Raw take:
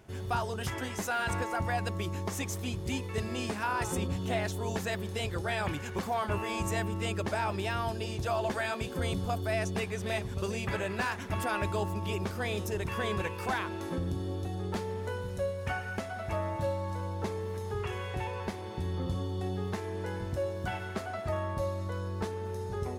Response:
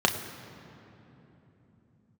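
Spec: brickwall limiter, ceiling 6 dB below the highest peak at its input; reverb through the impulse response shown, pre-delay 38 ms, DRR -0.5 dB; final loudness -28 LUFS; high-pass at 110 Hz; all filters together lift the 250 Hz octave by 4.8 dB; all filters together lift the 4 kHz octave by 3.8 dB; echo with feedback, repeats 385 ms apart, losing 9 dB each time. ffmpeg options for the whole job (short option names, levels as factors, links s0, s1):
-filter_complex "[0:a]highpass=110,equalizer=f=250:t=o:g=7,equalizer=f=4000:t=o:g=5,alimiter=limit=0.0794:level=0:latency=1,aecho=1:1:385|770|1155|1540:0.355|0.124|0.0435|0.0152,asplit=2[s0][s1];[1:a]atrim=start_sample=2205,adelay=38[s2];[s1][s2]afir=irnorm=-1:irlink=0,volume=0.211[s3];[s0][s3]amix=inputs=2:normalize=0,volume=1.12"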